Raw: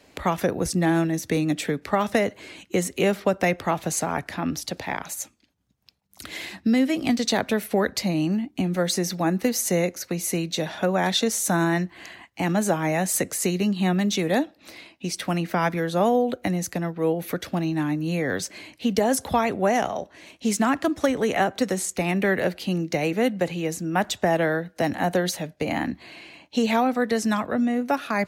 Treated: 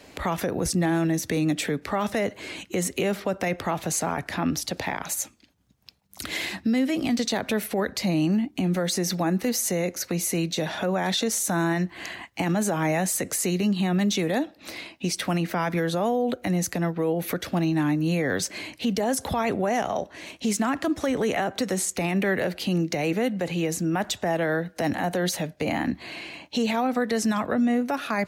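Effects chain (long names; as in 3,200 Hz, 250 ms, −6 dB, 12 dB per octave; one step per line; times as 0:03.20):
in parallel at 0 dB: downward compressor, threshold −33 dBFS, peak gain reduction 15.5 dB
on the sum: brickwall limiter −16.5 dBFS, peak gain reduction 9.5 dB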